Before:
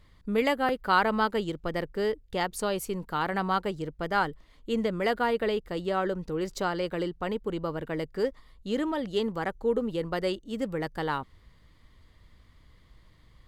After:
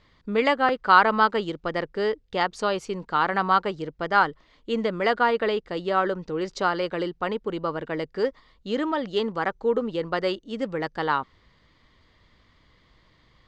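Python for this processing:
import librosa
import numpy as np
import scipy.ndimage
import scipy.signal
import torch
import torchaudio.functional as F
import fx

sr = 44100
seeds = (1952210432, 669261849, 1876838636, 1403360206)

y = fx.dynamic_eq(x, sr, hz=1200.0, q=1.7, threshold_db=-40.0, ratio=4.0, max_db=5)
y = scipy.signal.sosfilt(scipy.signal.butter(4, 6100.0, 'lowpass', fs=sr, output='sos'), y)
y = fx.low_shelf(y, sr, hz=130.0, db=-12.0)
y = F.gain(torch.from_numpy(y), 4.0).numpy()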